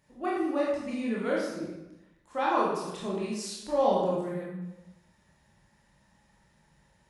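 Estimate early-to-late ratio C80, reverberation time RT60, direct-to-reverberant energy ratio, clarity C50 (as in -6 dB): 3.0 dB, 1.0 s, -5.5 dB, 0.0 dB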